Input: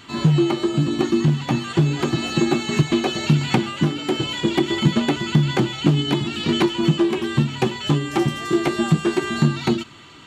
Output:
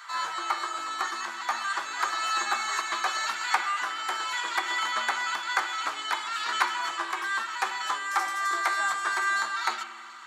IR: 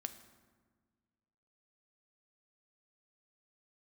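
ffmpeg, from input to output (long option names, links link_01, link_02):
-filter_complex "[0:a]highpass=frequency=1200:width=0.5412,highpass=frequency=1200:width=1.3066,asplit=2[link_01][link_02];[link_02]aemphasis=mode=reproduction:type=50fm[link_03];[1:a]atrim=start_sample=2205,lowpass=2000,lowshelf=frequency=440:gain=8.5[link_04];[link_03][link_04]afir=irnorm=-1:irlink=0,volume=10.5dB[link_05];[link_01][link_05]amix=inputs=2:normalize=0"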